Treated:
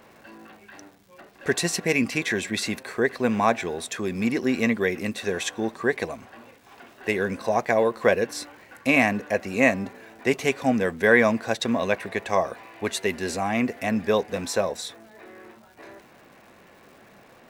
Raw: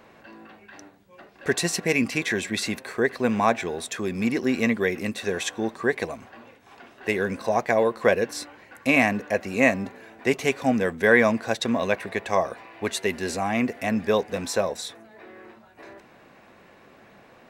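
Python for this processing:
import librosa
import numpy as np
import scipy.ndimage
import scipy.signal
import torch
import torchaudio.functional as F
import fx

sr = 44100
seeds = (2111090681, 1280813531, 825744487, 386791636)

y = fx.dmg_crackle(x, sr, seeds[0], per_s=370.0, level_db=-47.0)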